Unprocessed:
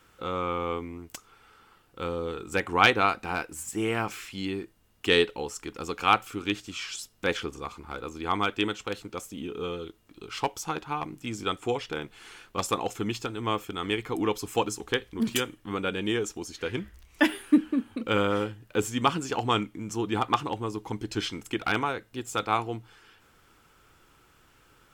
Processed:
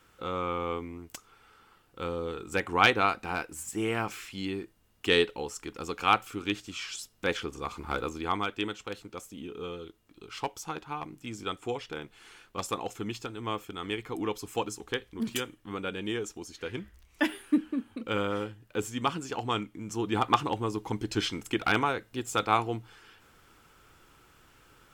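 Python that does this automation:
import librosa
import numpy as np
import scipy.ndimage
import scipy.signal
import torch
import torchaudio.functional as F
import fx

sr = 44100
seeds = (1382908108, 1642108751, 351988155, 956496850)

y = fx.gain(x, sr, db=fx.line((7.47, -2.0), (7.94, 6.0), (8.45, -5.0), (19.62, -5.0), (20.33, 1.0)))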